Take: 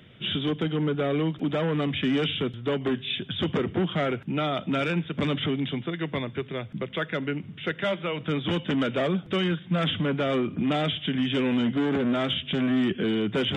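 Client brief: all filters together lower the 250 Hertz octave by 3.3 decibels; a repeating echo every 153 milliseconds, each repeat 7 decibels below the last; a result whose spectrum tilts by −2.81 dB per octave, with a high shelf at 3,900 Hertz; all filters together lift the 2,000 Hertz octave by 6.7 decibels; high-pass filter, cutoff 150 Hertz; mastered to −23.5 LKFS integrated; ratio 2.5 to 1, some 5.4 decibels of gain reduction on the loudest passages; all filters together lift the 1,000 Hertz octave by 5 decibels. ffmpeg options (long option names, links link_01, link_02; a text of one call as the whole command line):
ffmpeg -i in.wav -af "highpass=150,equalizer=frequency=250:width_type=o:gain=-3.5,equalizer=frequency=1000:width_type=o:gain=4.5,equalizer=frequency=2000:width_type=o:gain=8.5,highshelf=frequency=3900:gain=-5.5,acompressor=threshold=-28dB:ratio=2.5,aecho=1:1:153|306|459|612|765:0.447|0.201|0.0905|0.0407|0.0183,volume=6dB" out.wav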